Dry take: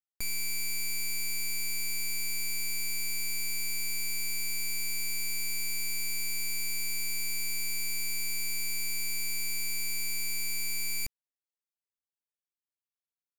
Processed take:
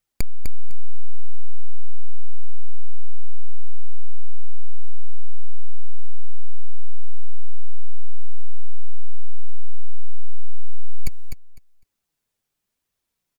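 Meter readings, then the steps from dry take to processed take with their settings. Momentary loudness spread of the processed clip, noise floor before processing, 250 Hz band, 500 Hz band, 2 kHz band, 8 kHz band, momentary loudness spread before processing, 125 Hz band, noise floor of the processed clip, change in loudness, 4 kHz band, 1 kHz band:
23 LU, below −85 dBFS, +4.5 dB, +2.0 dB, −19.5 dB, −20.5 dB, 0 LU, +21.5 dB, −81 dBFS, −8.0 dB, −20.5 dB, −4.0 dB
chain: low-shelf EQ 290 Hz +11 dB
flanger 0.85 Hz, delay 1.4 ms, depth 8.4 ms, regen +17%
gain into a clipping stage and back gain 29 dB
on a send: repeating echo 252 ms, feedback 17%, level −6.5 dB
on the sum: level +17.5 dB

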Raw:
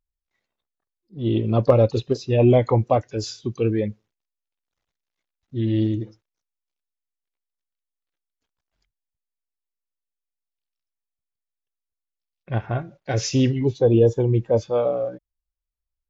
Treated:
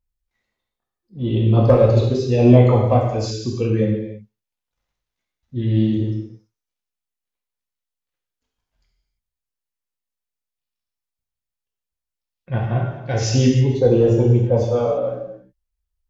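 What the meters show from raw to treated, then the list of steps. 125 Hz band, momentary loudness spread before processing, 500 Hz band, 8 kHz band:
+6.0 dB, 13 LU, +2.5 dB, can't be measured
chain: in parallel at −5.5 dB: asymmetric clip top −10.5 dBFS
on the sum: low-shelf EQ 120 Hz +8 dB
reverb whose tail is shaped and stops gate 360 ms falling, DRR −3 dB
level −6 dB

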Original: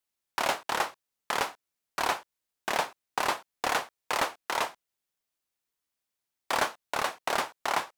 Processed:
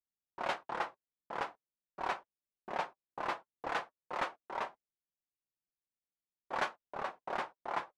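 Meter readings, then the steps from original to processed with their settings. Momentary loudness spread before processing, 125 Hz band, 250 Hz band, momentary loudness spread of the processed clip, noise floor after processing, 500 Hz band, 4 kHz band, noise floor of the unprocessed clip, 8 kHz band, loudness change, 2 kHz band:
5 LU, −7.5 dB, −7.5 dB, 6 LU, below −85 dBFS, −7.5 dB, −14.5 dB, below −85 dBFS, −22.0 dB, −8.5 dB, −9.5 dB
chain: flanger 0.43 Hz, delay 5.1 ms, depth 1.1 ms, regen −48%
first-order pre-emphasis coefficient 0.8
low-pass that shuts in the quiet parts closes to 330 Hz, open at −29.5 dBFS
level +10.5 dB

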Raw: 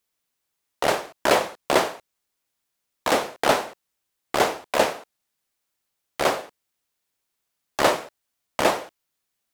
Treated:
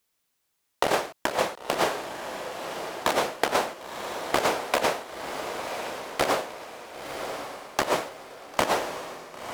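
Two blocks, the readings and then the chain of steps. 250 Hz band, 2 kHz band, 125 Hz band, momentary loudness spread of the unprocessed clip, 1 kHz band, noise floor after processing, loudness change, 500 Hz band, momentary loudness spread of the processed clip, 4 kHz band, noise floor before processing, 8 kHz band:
−3.0 dB, −2.0 dB, −2.5 dB, 10 LU, −2.0 dB, −76 dBFS, −5.0 dB, −3.5 dB, 12 LU, −2.0 dB, −80 dBFS, −2.0 dB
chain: compressor whose output falls as the input rises −23 dBFS, ratio −0.5
feedback delay with all-pass diffusion 1,017 ms, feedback 43%, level −7 dB

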